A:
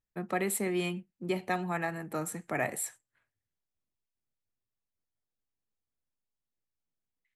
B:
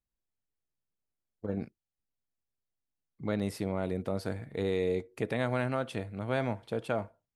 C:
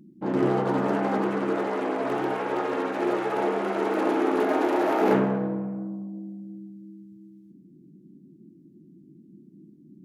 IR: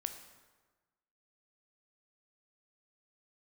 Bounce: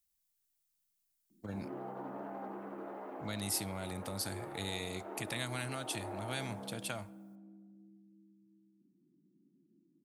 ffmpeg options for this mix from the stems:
-filter_complex "[1:a]crystalizer=i=6.5:c=0,volume=-5.5dB,asplit=2[link_01][link_02];[link_02]volume=-17.5dB[link_03];[2:a]bandpass=frequency=560:width_type=q:width=0.91:csg=0,adelay=1300,volume=-15.5dB,asplit=2[link_04][link_05];[link_05]volume=-4.5dB[link_06];[3:a]atrim=start_sample=2205[link_07];[link_03][link_06]amix=inputs=2:normalize=0[link_08];[link_08][link_07]afir=irnorm=-1:irlink=0[link_09];[link_01][link_04][link_09]amix=inputs=3:normalize=0,equalizer=frequency=450:width=2.5:gain=-9,acrossover=split=130|3000[link_10][link_11][link_12];[link_11]acompressor=threshold=-40dB:ratio=3[link_13];[link_10][link_13][link_12]amix=inputs=3:normalize=0"

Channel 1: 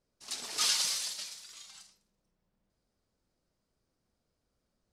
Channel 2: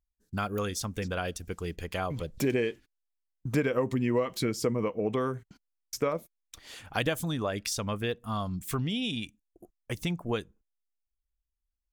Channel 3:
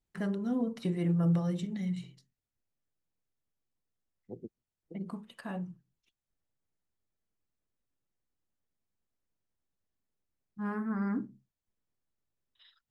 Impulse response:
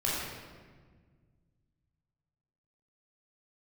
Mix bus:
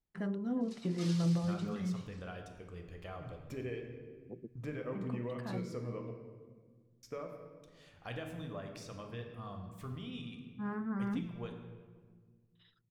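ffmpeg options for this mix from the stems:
-filter_complex "[0:a]adelay=400,volume=-15.5dB,asplit=2[link_01][link_02];[link_02]volume=-15dB[link_03];[1:a]bandreject=frequency=70.24:width_type=h:width=4,bandreject=frequency=140.48:width_type=h:width=4,bandreject=frequency=210.72:width_type=h:width=4,bandreject=frequency=280.96:width_type=h:width=4,bandreject=frequency=351.2:width_type=h:width=4,bandreject=frequency=421.44:width_type=h:width=4,bandreject=frequency=491.68:width_type=h:width=4,bandreject=frequency=561.92:width_type=h:width=4,bandreject=frequency=632.16:width_type=h:width=4,bandreject=frequency=702.4:width_type=h:width=4,bandreject=frequency=772.64:width_type=h:width=4,bandreject=frequency=842.88:width_type=h:width=4,bandreject=frequency=913.12:width_type=h:width=4,bandreject=frequency=983.36:width_type=h:width=4,bandreject=frequency=1053.6:width_type=h:width=4,bandreject=frequency=1123.84:width_type=h:width=4,bandreject=frequency=1194.08:width_type=h:width=4,bandreject=frequency=1264.32:width_type=h:width=4,bandreject=frequency=1334.56:width_type=h:width=4,bandreject=frequency=1404.8:width_type=h:width=4,bandreject=frequency=1475.04:width_type=h:width=4,bandreject=frequency=1545.28:width_type=h:width=4,bandreject=frequency=1615.52:width_type=h:width=4,bandreject=frequency=1685.76:width_type=h:width=4,bandreject=frequency=1756:width_type=h:width=4,bandreject=frequency=1826.24:width_type=h:width=4,bandreject=frequency=1896.48:width_type=h:width=4,bandreject=frequency=1966.72:width_type=h:width=4,bandreject=frequency=2036.96:width_type=h:width=4,bandreject=frequency=2107.2:width_type=h:width=4,bandreject=frequency=2177.44:width_type=h:width=4,bandreject=frequency=2247.68:width_type=h:width=4,bandreject=frequency=2317.92:width_type=h:width=4,bandreject=frequency=2388.16:width_type=h:width=4,bandreject=frequency=2458.4:width_type=h:width=4,bandreject=frequency=2528.64:width_type=h:width=4,bandreject=frequency=2598.88:width_type=h:width=4,bandreject=frequency=2669.12:width_type=h:width=4,adelay=1100,volume=-16.5dB,asplit=3[link_04][link_05][link_06];[link_04]atrim=end=6.11,asetpts=PTS-STARTPTS,afade=type=out:start_time=6.106:duration=0.004:curve=hsin[link_07];[link_05]atrim=start=6.11:end=6.84,asetpts=PTS-STARTPTS,volume=0[link_08];[link_06]atrim=start=6.84,asetpts=PTS-STARTPTS,afade=type=in:duration=0.004:curve=hsin[link_09];[link_07][link_08][link_09]concat=n=3:v=0:a=1,asplit=2[link_10][link_11];[link_11]volume=-9.5dB[link_12];[2:a]volume=-3.5dB,asplit=2[link_13][link_14];[link_14]volume=-19dB[link_15];[3:a]atrim=start_sample=2205[link_16];[link_03][link_12]amix=inputs=2:normalize=0[link_17];[link_17][link_16]afir=irnorm=-1:irlink=0[link_18];[link_15]aecho=0:1:356:1[link_19];[link_01][link_10][link_13][link_18][link_19]amix=inputs=5:normalize=0,lowpass=frequency=2900:poles=1"

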